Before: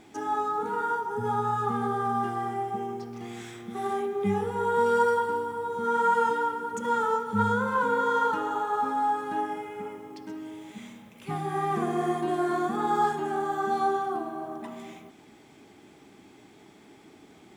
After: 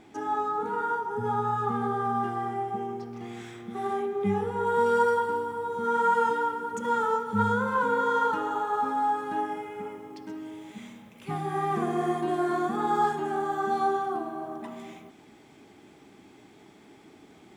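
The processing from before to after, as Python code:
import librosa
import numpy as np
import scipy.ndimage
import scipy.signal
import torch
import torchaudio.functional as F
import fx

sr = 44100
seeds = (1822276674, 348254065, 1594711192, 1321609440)

y = fx.high_shelf(x, sr, hz=4600.0, db=fx.steps((0.0, -7.5), (4.65, -2.5)))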